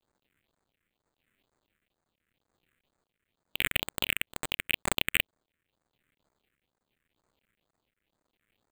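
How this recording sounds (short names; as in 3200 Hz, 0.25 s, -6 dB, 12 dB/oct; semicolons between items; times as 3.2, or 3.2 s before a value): a quantiser's noise floor 12-bit, dither none; tremolo triangle 0.85 Hz, depth 55%; aliases and images of a low sample rate 5500 Hz, jitter 0%; phasing stages 4, 2.1 Hz, lowest notch 800–2900 Hz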